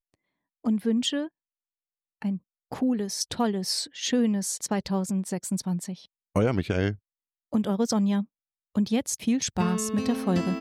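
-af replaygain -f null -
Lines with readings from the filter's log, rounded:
track_gain = +7.9 dB
track_peak = 0.177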